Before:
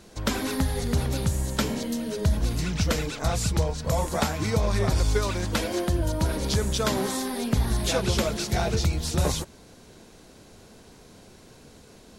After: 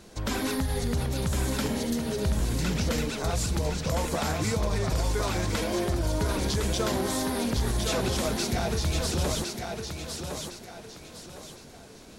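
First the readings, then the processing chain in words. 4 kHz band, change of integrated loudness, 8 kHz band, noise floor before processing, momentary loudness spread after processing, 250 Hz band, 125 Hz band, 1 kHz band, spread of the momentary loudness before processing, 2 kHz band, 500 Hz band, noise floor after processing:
−1.0 dB, −2.0 dB, −0.5 dB, −51 dBFS, 15 LU, −1.0 dB, −3.0 dB, −1.5 dB, 3 LU, −1.0 dB, −1.5 dB, −48 dBFS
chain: brickwall limiter −19 dBFS, peak gain reduction 8 dB
feedback echo with a high-pass in the loop 1,059 ms, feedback 36%, high-pass 160 Hz, level −4.5 dB

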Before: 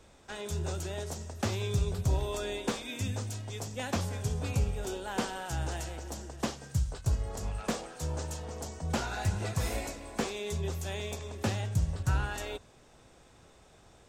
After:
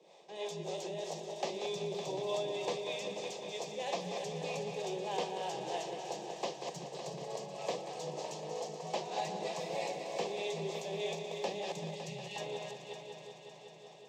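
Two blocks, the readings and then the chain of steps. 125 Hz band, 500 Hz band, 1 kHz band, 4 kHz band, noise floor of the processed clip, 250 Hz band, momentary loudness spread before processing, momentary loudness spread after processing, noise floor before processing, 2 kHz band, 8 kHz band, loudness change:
−17.0 dB, +2.0 dB, 0.0 dB, −1.0 dB, −54 dBFS, −8.0 dB, 8 LU, 6 LU, −59 dBFS, −5.5 dB, −6.5 dB, −4.5 dB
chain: feedback delay that plays each chunk backwards 193 ms, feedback 49%, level −7.5 dB
Butterworth high-pass 160 Hz 72 dB per octave
gain on a spectral selection 0:11.95–0:12.36, 240–1,800 Hz −29 dB
high-shelf EQ 5,500 Hz +7.5 dB
in parallel at −0.5 dB: brickwall limiter −29.5 dBFS, peak gain reduction 12 dB
on the sum: two-band tremolo in antiphase 3.2 Hz, depth 70%, crossover 410 Hz
high-frequency loss of the air 190 metres
phaser with its sweep stopped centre 590 Hz, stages 4
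on a send: echo machine with several playback heads 186 ms, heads first and third, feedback 67%, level −11 dB
on the sum: level +1 dB

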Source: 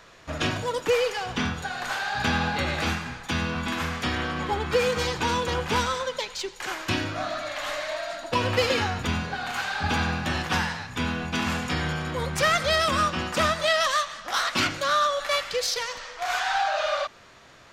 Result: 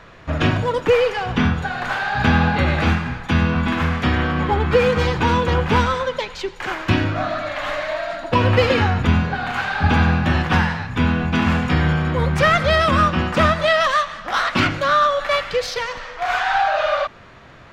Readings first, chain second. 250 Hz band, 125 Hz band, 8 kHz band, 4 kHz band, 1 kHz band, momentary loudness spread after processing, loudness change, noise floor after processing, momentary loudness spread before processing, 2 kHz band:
+10.5 dB, +12.5 dB, −5.0 dB, +1.5 dB, +7.0 dB, 8 LU, +7.0 dB, −43 dBFS, 8 LU, +6.0 dB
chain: bass and treble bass +6 dB, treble −14 dB
level +7 dB

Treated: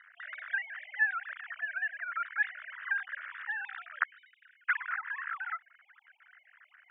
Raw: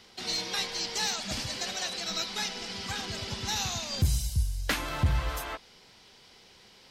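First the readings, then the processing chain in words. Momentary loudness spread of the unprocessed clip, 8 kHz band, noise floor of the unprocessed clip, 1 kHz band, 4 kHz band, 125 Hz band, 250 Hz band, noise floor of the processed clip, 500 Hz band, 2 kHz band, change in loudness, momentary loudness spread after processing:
6 LU, below −40 dB, −56 dBFS, −2.0 dB, −26.0 dB, below −40 dB, below −40 dB, −68 dBFS, below −25 dB, +6.5 dB, −4.0 dB, 11 LU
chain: three sine waves on the formant tracks
in parallel at −2.5 dB: downward compressor, threshold −42 dBFS, peak gain reduction 24 dB
on the sum: flat-topped band-pass 1,600 Hz, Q 3

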